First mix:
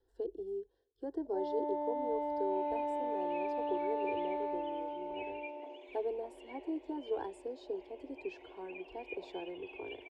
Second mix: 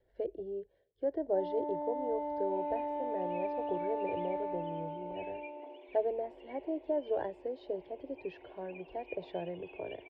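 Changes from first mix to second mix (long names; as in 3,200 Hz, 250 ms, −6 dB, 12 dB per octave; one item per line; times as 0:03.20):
speech: remove phaser with its sweep stopped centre 600 Hz, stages 6
master: add high-frequency loss of the air 220 metres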